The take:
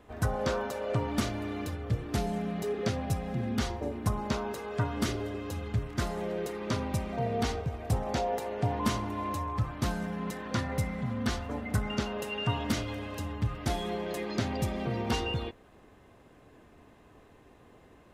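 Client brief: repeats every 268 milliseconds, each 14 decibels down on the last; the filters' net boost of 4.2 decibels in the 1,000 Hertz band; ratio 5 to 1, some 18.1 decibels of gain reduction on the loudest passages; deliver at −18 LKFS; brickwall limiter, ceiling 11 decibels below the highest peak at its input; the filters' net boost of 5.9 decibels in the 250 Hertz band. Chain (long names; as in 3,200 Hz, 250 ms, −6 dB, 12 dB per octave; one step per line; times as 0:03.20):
parametric band 250 Hz +7 dB
parametric band 1,000 Hz +5 dB
downward compressor 5 to 1, threshold −41 dBFS
brickwall limiter −39 dBFS
repeating echo 268 ms, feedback 20%, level −14 dB
level +29.5 dB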